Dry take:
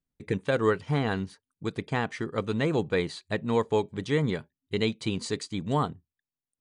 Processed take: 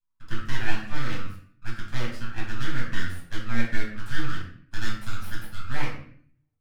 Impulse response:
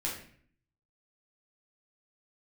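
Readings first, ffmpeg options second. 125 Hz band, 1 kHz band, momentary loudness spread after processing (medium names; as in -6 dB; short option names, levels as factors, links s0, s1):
-2.5 dB, -5.0 dB, 9 LU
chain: -filter_complex "[0:a]afreqshift=450,aeval=exprs='abs(val(0))':c=same[s0];[1:a]atrim=start_sample=2205[s1];[s0][s1]afir=irnorm=-1:irlink=0,volume=0.473"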